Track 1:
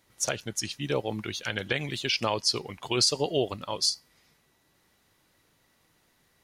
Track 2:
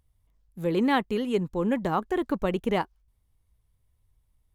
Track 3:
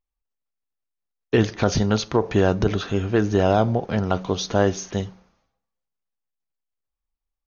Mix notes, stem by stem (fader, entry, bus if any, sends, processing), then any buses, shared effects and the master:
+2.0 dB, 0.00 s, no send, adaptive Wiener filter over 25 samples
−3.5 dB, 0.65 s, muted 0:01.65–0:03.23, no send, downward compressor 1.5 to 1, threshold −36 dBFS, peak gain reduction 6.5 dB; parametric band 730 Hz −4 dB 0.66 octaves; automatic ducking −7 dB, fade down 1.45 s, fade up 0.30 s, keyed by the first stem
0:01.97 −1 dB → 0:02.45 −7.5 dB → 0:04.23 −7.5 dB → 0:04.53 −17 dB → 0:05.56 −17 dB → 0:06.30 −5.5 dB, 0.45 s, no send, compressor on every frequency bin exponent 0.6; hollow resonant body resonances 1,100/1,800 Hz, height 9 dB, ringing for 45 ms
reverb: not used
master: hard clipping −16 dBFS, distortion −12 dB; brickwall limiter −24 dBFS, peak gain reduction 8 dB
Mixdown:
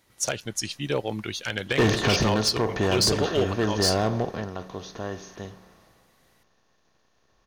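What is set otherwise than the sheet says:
stem 1: missing adaptive Wiener filter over 25 samples
stem 2: muted
master: missing brickwall limiter −24 dBFS, peak gain reduction 8 dB

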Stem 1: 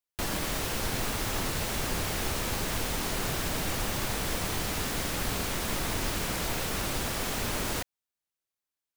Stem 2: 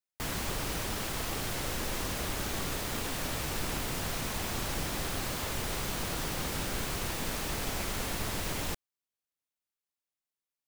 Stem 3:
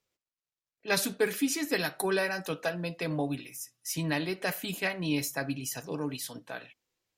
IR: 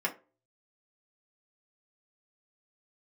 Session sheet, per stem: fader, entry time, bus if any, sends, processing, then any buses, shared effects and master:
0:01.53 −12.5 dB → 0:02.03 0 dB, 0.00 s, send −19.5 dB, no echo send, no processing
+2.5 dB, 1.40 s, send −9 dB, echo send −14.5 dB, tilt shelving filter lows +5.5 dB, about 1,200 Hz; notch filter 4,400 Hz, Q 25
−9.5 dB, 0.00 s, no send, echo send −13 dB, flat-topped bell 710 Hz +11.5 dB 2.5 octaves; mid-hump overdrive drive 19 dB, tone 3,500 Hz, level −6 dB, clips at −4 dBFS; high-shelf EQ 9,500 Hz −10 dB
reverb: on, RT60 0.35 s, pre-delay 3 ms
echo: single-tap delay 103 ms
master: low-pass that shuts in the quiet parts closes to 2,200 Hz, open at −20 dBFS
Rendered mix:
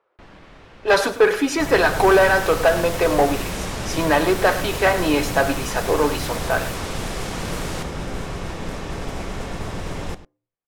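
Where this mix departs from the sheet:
stem 3 −9.5 dB → −1.0 dB
reverb return −7.5 dB

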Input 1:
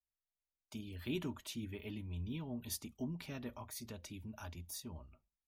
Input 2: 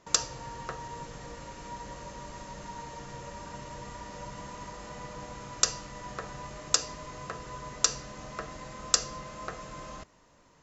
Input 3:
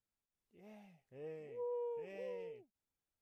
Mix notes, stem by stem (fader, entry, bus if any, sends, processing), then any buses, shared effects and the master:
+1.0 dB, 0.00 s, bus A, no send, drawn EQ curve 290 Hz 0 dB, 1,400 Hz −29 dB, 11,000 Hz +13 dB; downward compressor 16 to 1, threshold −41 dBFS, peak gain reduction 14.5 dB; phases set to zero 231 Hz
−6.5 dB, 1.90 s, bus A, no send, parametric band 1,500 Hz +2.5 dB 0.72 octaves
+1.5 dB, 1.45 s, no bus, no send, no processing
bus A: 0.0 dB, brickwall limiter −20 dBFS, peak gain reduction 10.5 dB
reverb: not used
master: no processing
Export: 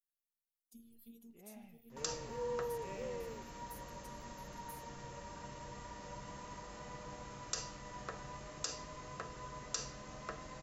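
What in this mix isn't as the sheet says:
stem 1 +1.0 dB → −9.5 dB
stem 2: missing parametric band 1,500 Hz +2.5 dB 0.72 octaves
stem 3: entry 1.45 s → 0.80 s

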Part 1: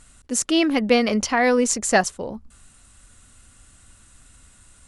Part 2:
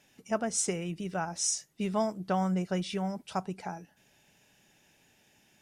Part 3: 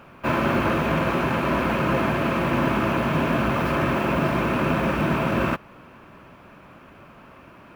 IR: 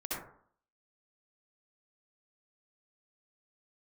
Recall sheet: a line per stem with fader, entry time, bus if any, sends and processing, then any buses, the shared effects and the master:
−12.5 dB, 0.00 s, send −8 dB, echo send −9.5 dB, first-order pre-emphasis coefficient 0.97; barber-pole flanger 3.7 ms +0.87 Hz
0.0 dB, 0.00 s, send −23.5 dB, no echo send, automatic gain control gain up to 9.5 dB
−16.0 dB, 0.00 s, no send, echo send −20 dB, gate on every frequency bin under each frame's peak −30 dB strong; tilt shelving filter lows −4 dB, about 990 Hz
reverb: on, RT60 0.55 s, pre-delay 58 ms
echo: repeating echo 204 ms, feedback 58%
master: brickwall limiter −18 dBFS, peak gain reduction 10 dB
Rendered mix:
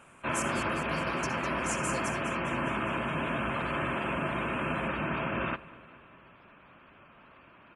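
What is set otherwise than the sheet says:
stem 2: muted
stem 3 −16.0 dB → −8.0 dB

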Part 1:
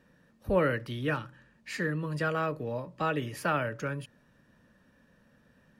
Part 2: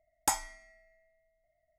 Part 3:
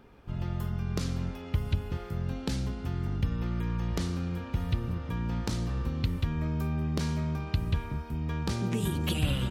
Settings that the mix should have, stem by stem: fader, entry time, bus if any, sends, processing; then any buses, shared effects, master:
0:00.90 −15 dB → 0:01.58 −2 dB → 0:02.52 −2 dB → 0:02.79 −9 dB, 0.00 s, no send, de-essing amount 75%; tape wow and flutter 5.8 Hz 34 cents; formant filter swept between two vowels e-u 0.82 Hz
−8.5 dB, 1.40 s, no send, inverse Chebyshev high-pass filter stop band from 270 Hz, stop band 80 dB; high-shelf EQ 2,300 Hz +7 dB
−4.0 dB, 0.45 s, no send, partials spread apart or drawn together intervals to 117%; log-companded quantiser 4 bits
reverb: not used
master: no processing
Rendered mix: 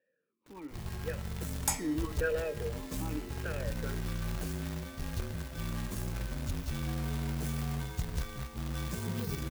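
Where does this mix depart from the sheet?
stem 1 −15.0 dB → −6.5 dB
stem 2: missing inverse Chebyshev high-pass filter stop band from 270 Hz, stop band 80 dB
master: extra high-shelf EQ 12,000 Hz +5.5 dB

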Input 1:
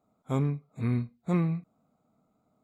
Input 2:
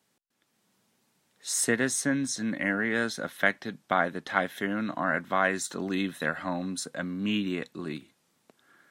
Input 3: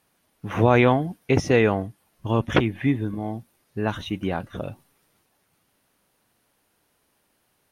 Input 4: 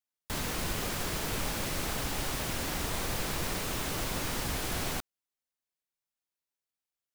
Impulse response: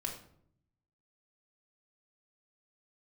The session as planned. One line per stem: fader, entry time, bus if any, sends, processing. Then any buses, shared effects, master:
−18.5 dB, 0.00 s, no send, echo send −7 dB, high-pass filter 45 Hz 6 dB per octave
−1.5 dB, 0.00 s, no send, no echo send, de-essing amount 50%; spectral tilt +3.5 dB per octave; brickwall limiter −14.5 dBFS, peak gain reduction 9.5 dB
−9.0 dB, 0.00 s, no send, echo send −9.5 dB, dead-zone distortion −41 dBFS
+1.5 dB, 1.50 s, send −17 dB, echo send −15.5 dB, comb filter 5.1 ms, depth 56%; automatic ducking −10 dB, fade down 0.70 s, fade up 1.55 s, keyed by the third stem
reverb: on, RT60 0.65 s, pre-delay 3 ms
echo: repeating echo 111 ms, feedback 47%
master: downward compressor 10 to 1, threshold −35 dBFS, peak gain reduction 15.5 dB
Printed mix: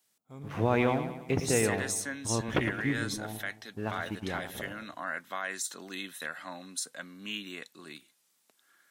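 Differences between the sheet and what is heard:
stem 2 −1.5 dB → −8.0 dB
stem 4: muted
reverb: off
master: missing downward compressor 10 to 1, threshold −35 dBFS, peak gain reduction 15.5 dB

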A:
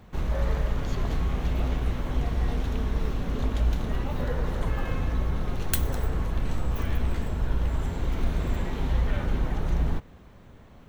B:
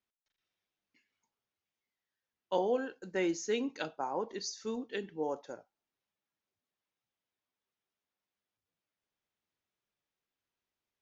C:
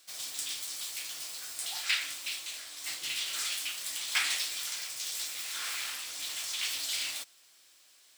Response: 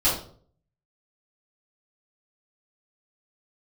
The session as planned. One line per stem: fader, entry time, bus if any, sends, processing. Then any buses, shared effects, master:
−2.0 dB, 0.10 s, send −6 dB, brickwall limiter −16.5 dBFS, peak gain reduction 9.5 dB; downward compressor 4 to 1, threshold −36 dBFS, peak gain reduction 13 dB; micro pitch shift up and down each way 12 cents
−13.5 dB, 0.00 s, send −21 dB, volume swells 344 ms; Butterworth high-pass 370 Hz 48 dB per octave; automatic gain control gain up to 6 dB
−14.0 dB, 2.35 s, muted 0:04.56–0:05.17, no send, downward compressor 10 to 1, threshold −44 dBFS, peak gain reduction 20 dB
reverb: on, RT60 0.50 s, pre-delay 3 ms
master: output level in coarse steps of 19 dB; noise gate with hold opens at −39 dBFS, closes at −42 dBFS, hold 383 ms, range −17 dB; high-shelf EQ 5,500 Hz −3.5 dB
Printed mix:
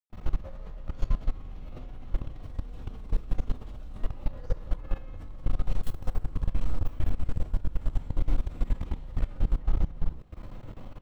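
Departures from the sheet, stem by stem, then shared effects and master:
stem A: missing micro pitch shift up and down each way 12 cents
stem B −13.5 dB → −24.0 dB

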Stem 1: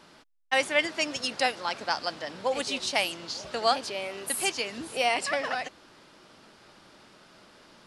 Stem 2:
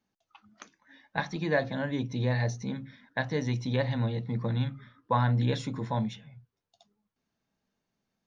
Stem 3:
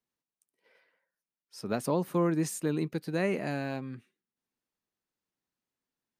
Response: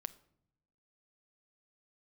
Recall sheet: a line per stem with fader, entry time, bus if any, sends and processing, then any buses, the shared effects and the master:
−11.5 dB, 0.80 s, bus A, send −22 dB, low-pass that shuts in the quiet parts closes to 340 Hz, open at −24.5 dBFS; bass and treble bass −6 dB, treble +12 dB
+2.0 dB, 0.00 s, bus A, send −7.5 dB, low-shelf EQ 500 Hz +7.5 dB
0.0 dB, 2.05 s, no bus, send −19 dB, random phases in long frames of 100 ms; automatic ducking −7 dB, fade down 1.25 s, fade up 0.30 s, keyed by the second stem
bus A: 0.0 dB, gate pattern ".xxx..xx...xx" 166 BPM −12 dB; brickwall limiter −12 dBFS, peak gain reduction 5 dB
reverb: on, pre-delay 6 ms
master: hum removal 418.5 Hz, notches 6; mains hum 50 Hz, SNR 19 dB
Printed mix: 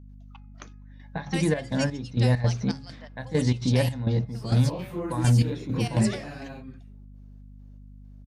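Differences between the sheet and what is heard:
stem 2: send off
stem 3: entry 2.05 s → 2.80 s

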